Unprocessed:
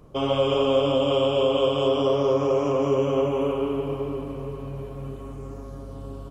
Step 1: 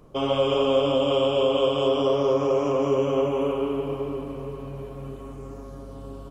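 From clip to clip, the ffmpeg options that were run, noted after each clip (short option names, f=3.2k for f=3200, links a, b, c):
-af "equalizer=f=83:w=1.1:g=-6"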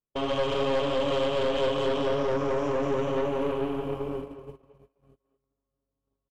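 -filter_complex "[0:a]agate=range=-43dB:threshold=-31dB:ratio=16:detection=peak,aeval=exprs='(tanh(12.6*val(0)+0.6)-tanh(0.6))/12.6':c=same,asplit=2[a][b];[b]adelay=220,highpass=300,lowpass=3.4k,asoftclip=type=hard:threshold=-28dB,volume=-11dB[c];[a][c]amix=inputs=2:normalize=0"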